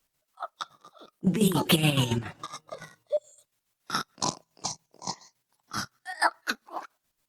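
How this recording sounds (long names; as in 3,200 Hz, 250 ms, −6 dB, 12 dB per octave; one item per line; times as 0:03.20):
a quantiser's noise floor 12 bits, dither triangular
chopped level 7.1 Hz, depth 60%, duty 50%
Opus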